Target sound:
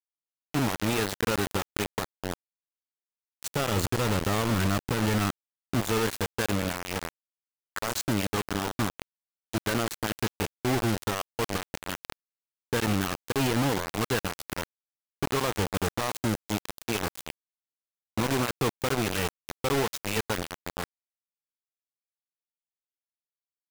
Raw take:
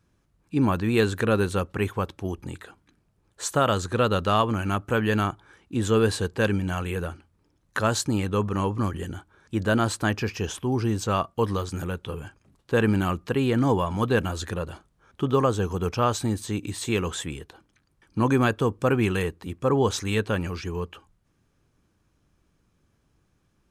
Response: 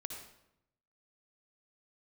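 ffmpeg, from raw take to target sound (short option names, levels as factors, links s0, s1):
-filter_complex "[0:a]asplit=3[s0][s1][s2];[s0]afade=t=out:st=3.48:d=0.02[s3];[s1]lowshelf=f=340:g=10,afade=t=in:st=3.48:d=0.02,afade=t=out:st=5.79:d=0.02[s4];[s2]afade=t=in:st=5.79:d=0.02[s5];[s3][s4][s5]amix=inputs=3:normalize=0,alimiter=limit=0.141:level=0:latency=1:release=70,acrusher=bits=3:mix=0:aa=0.000001,volume=0.668"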